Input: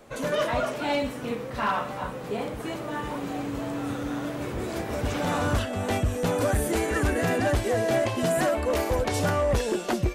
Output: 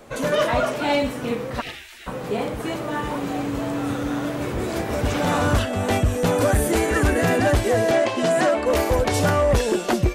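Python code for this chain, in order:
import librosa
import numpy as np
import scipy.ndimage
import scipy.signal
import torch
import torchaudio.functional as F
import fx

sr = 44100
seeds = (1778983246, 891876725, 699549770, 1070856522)

y = fx.spec_gate(x, sr, threshold_db=-20, keep='weak', at=(1.6, 2.06), fade=0.02)
y = fx.bandpass_edges(y, sr, low_hz=fx.line((7.91, 260.0), (8.65, 160.0)), high_hz=7400.0, at=(7.91, 8.65), fade=0.02)
y = y * librosa.db_to_amplitude(5.5)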